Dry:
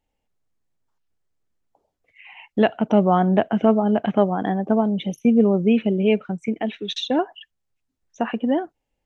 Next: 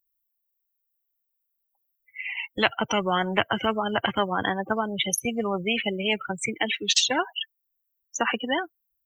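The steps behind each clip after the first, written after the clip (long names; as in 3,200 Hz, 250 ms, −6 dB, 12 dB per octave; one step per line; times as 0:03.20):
spectral dynamics exaggerated over time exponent 2
high-pass filter 370 Hz 6 dB per octave
every bin compressed towards the loudest bin 4 to 1
level +5 dB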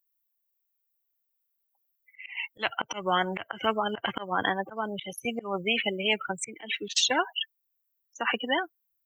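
volume swells 163 ms
low-shelf EQ 210 Hz −9.5 dB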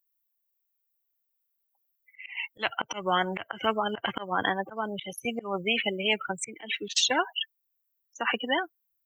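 no processing that can be heard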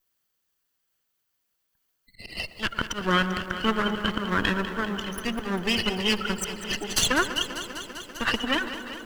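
lower of the sound and its delayed copy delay 0.66 ms
tape delay 113 ms, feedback 90%, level −13 dB, low-pass 1,400 Hz
feedback echo at a low word length 197 ms, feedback 80%, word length 9 bits, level −12 dB
level +3.5 dB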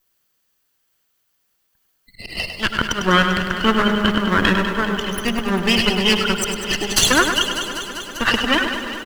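repeating echo 101 ms, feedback 54%, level −8 dB
level +7.5 dB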